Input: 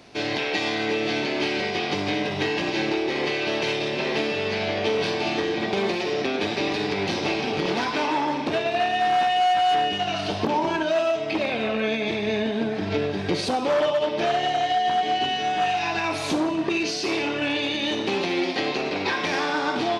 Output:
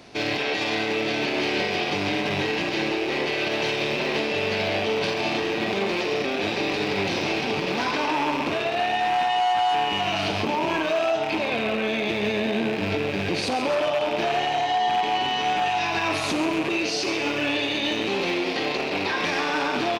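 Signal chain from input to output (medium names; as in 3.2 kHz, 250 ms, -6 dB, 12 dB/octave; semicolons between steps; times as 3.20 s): rattle on loud lows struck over -37 dBFS, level -20 dBFS; peak limiter -18 dBFS, peak gain reduction 7.5 dB; frequency-shifting echo 133 ms, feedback 55%, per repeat +120 Hz, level -11 dB; trim +2 dB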